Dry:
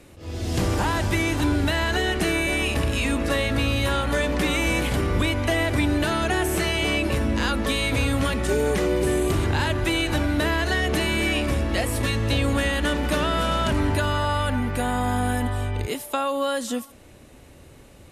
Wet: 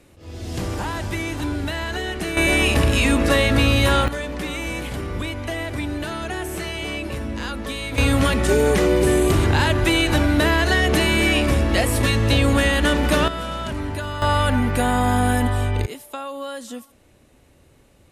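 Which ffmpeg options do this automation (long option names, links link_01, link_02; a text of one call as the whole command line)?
ffmpeg -i in.wav -af "asetnsamples=nb_out_samples=441:pad=0,asendcmd='2.37 volume volume 6dB;4.08 volume volume -5dB;7.98 volume volume 5dB;13.28 volume volume -5dB;14.22 volume volume 5dB;15.86 volume volume -6.5dB',volume=-3.5dB" out.wav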